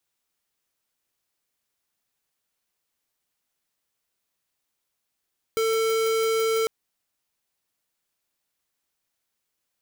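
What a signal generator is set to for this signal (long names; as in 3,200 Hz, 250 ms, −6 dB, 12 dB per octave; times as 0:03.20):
tone square 447 Hz −23 dBFS 1.10 s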